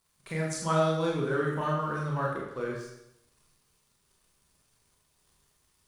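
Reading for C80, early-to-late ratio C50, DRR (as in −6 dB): 5.0 dB, 2.0 dB, −3.5 dB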